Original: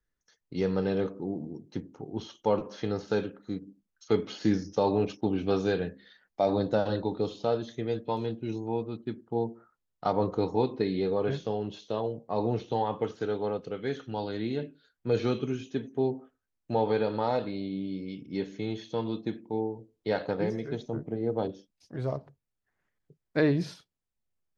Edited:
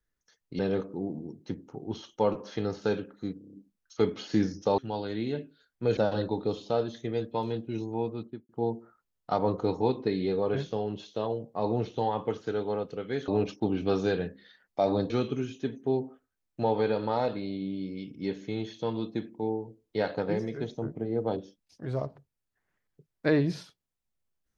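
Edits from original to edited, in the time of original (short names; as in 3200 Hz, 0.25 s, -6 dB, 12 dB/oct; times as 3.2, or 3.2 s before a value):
0.59–0.85 cut
3.64 stutter 0.03 s, 6 plays
4.89–6.71 swap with 14.02–15.21
8.94–9.23 studio fade out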